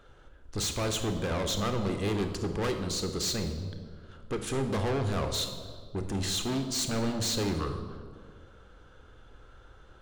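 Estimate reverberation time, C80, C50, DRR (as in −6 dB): 1.9 s, 9.5 dB, 7.5 dB, 6.0 dB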